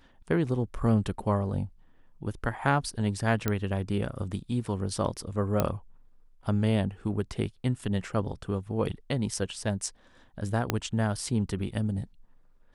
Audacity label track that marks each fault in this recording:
3.480000	3.480000	click −12 dBFS
5.600000	5.600000	click −11 dBFS
10.700000	10.700000	click −10 dBFS

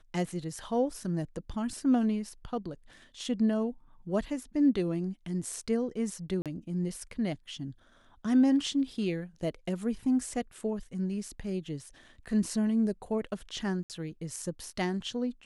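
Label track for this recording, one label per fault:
6.420000	6.460000	drop-out 37 ms
13.830000	13.900000	drop-out 68 ms

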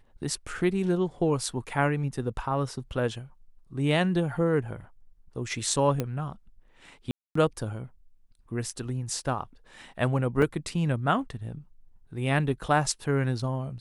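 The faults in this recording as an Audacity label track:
6.000000	6.000000	click −14 dBFS
7.110000	7.350000	drop-out 244 ms
10.420000	10.420000	drop-out 4.1 ms

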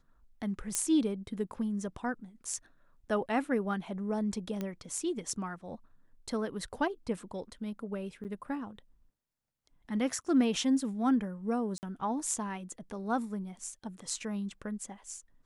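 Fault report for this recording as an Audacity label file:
0.750000	0.750000	click −14 dBFS
4.610000	4.610000	click −22 dBFS
8.240000	8.250000	drop-out 8.8 ms
11.780000	11.830000	drop-out 49 ms

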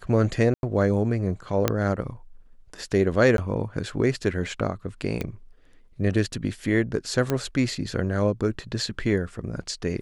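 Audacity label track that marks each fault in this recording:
0.540000	0.630000	drop-out 91 ms
1.680000	1.680000	click −6 dBFS
3.370000	3.380000	drop-out 12 ms
5.210000	5.210000	click −15 dBFS
7.300000	7.300000	click −11 dBFS

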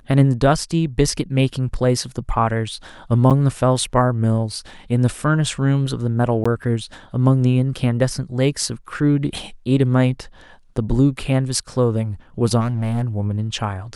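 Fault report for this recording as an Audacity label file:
3.300000	3.310000	drop-out 7.5 ms
6.440000	6.460000	drop-out 15 ms
12.600000	13.030000	clipping −16.5 dBFS

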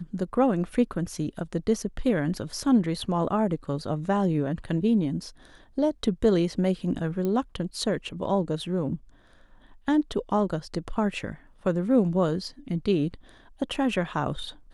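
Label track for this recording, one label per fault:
7.250000	7.250000	click −18 dBFS

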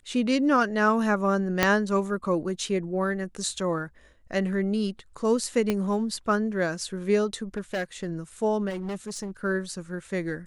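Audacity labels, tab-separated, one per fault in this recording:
1.630000	1.630000	click −4 dBFS
5.700000	5.700000	click −12 dBFS
7.560000	8.110000	clipping −24.5 dBFS
8.690000	9.310000	clipping −29 dBFS

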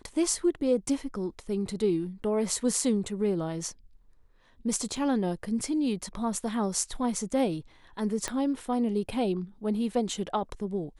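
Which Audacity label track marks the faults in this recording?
4.970000	4.970000	drop-out 3.2 ms
8.280000	8.280000	click −16 dBFS

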